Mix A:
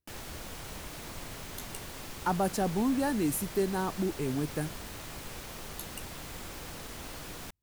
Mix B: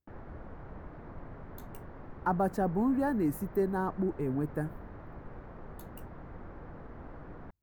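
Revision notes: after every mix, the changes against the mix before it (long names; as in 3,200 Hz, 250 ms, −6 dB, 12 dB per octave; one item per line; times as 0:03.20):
background: add head-to-tape spacing loss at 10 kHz 42 dB
master: add flat-topped bell 5,400 Hz −15.5 dB 2.6 octaves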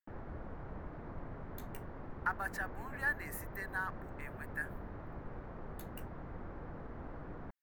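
speech: add high-pass with resonance 1,800 Hz, resonance Q 3.5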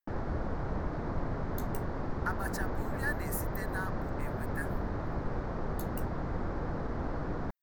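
background +11.5 dB
master: add high shelf with overshoot 3,600 Hz +7.5 dB, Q 1.5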